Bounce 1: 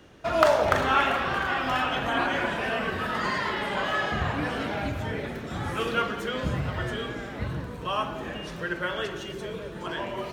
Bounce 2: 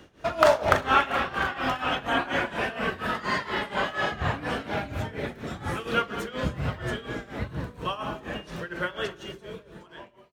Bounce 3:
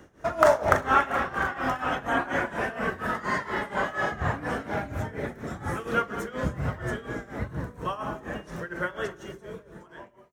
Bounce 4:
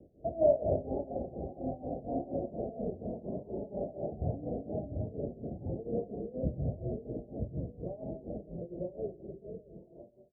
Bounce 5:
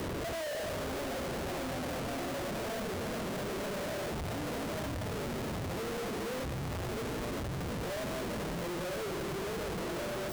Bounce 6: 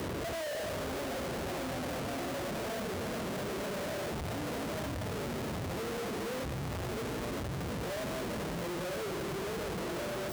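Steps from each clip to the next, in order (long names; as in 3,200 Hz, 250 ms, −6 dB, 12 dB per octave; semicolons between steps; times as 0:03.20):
fade-out on the ending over 1.52 s; amplitude tremolo 4.2 Hz, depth 84%; level +3 dB
flat-topped bell 3,400 Hz −9 dB 1.2 octaves
Butterworth low-pass 690 Hz 72 dB per octave; level −4 dB
sign of each sample alone
high-pass filter 44 Hz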